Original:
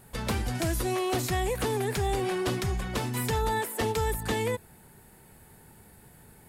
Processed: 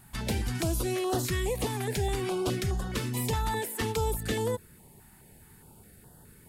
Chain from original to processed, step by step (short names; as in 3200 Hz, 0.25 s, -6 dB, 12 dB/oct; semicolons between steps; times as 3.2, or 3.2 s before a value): stepped notch 4.8 Hz 490–2300 Hz